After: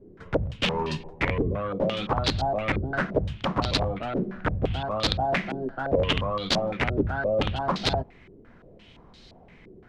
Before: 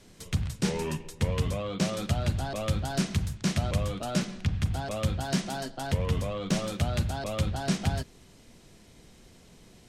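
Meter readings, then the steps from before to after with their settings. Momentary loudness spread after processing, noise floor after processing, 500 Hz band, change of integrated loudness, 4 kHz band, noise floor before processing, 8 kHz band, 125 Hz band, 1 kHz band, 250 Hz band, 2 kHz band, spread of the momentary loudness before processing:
5 LU, −52 dBFS, +7.5 dB, +3.5 dB, +7.5 dB, −55 dBFS, −6.5 dB, −1.5 dB, +8.0 dB, +1.0 dB, +8.0 dB, 4 LU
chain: wrap-around overflow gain 20.5 dB
low-pass on a step sequencer 5.8 Hz 390–4,200 Hz
level +1.5 dB

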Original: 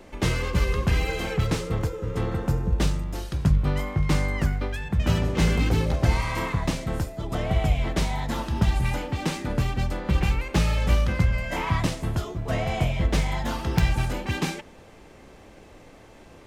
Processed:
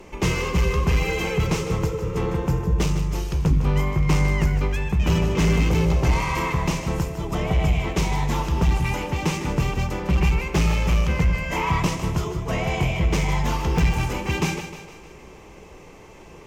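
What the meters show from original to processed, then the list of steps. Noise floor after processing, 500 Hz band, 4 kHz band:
−44 dBFS, +3.5 dB, +2.0 dB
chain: EQ curve with evenly spaced ripples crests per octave 0.76, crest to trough 7 dB
sine wavefolder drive 7 dB, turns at −6 dBFS
echo with a time of its own for lows and highs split 340 Hz, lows 101 ms, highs 154 ms, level −10 dB
level −8 dB

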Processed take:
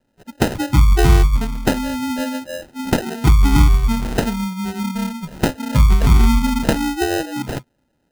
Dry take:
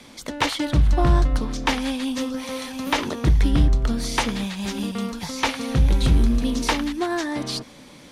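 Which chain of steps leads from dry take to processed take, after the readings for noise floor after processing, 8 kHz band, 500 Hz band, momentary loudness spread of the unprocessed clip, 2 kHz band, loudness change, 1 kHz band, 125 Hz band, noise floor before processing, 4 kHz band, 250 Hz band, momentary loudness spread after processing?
−67 dBFS, +2.5 dB, +5.0 dB, 9 LU, +2.0 dB, +5.0 dB, +3.0 dB, +5.5 dB, −46 dBFS, −1.0 dB, +4.5 dB, 12 LU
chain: noise reduction from a noise print of the clip's start 27 dB
decimation without filtering 39×
level +5.5 dB

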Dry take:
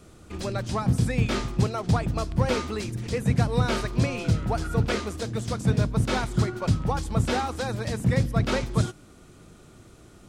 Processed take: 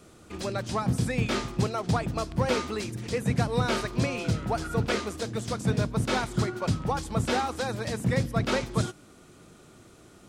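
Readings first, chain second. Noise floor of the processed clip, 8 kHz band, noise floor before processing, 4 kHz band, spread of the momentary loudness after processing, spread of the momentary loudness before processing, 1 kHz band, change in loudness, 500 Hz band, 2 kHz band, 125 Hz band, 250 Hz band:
−53 dBFS, 0.0 dB, −51 dBFS, 0.0 dB, 5 LU, 6 LU, 0.0 dB, −2.5 dB, −0.5 dB, 0.0 dB, −4.5 dB, −2.0 dB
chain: low-shelf EQ 96 Hz −11.5 dB

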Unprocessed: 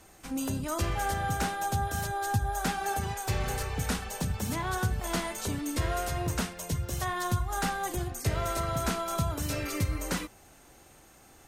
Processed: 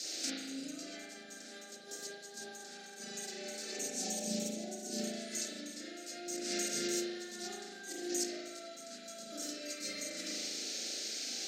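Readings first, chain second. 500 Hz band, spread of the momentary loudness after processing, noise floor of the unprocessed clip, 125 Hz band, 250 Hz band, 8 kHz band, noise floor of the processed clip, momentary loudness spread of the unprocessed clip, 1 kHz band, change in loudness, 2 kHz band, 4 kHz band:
−7.5 dB, 11 LU, −56 dBFS, −26.5 dB, −7.0 dB, −0.5 dB, −51 dBFS, 3 LU, −20.0 dB, −8.0 dB, −10.5 dB, 0.0 dB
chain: elliptic high-pass filter 220 Hz, stop band 50 dB
gain on a spectral selection 0:03.72–0:04.99, 850–5,400 Hz −16 dB
noise in a band 2,100–6,400 Hz −59 dBFS
compressor whose output falls as the input rises −45 dBFS, ratio −1
Butterworth band-reject 990 Hz, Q 1.1
flat-topped bell 5,600 Hz +15 dB 1.2 octaves
spring reverb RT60 1.4 s, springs 37 ms, chirp 50 ms, DRR −7 dB
level −6 dB

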